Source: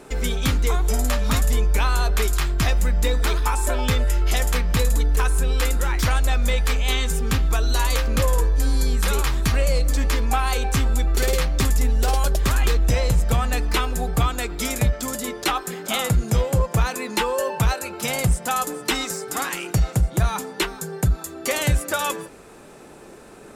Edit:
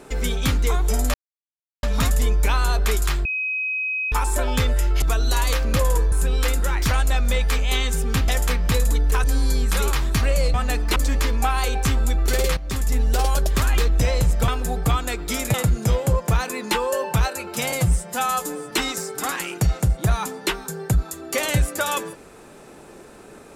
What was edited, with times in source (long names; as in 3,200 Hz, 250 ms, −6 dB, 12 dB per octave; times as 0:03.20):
0:01.14: splice in silence 0.69 s
0:02.56–0:03.43: beep over 2,530 Hz −22 dBFS
0:04.33–0:05.29: swap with 0:07.45–0:08.55
0:11.46–0:11.90: fade in, from −13 dB
0:13.37–0:13.79: move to 0:09.85
0:14.85–0:16.00: remove
0:18.18–0:18.84: time-stretch 1.5×